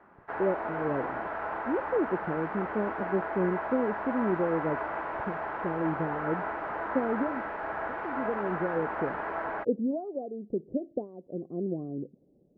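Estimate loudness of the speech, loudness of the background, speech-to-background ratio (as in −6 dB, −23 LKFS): −33.0 LKFS, −34.5 LKFS, 1.5 dB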